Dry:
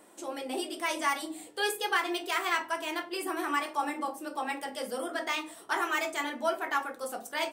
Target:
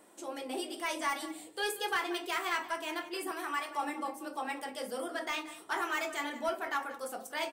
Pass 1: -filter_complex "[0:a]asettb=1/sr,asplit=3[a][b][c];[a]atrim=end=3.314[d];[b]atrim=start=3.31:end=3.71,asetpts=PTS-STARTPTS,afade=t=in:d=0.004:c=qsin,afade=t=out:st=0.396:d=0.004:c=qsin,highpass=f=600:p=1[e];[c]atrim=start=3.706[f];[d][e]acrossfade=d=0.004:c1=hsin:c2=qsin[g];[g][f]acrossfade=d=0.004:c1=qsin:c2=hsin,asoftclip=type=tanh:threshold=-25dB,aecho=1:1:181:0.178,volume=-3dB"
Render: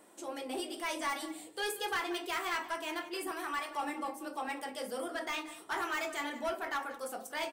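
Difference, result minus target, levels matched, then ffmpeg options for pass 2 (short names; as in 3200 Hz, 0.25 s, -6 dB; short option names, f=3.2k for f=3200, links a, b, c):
soft clip: distortion +8 dB
-filter_complex "[0:a]asettb=1/sr,asplit=3[a][b][c];[a]atrim=end=3.314[d];[b]atrim=start=3.31:end=3.71,asetpts=PTS-STARTPTS,afade=t=in:d=0.004:c=qsin,afade=t=out:st=0.396:d=0.004:c=qsin,highpass=f=600:p=1[e];[c]atrim=start=3.706[f];[d][e]acrossfade=d=0.004:c1=hsin:c2=qsin[g];[g][f]acrossfade=d=0.004:c1=qsin:c2=hsin,asoftclip=type=tanh:threshold=-19dB,aecho=1:1:181:0.178,volume=-3dB"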